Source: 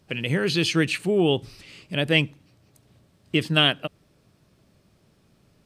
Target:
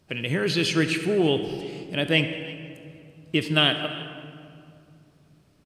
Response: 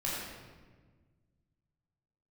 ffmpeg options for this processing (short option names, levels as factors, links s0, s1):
-filter_complex "[0:a]aecho=1:1:335:0.0891,asplit=2[s0][s1];[1:a]atrim=start_sample=2205,asetrate=23814,aresample=44100,lowshelf=f=110:g=-10.5[s2];[s1][s2]afir=irnorm=-1:irlink=0,volume=0.168[s3];[s0][s3]amix=inputs=2:normalize=0,volume=0.75"